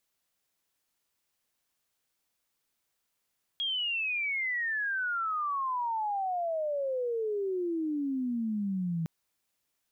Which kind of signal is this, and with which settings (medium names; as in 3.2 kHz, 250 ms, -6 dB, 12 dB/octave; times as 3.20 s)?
sweep logarithmic 3.3 kHz -> 160 Hz -28.5 dBFS -> -28.5 dBFS 5.46 s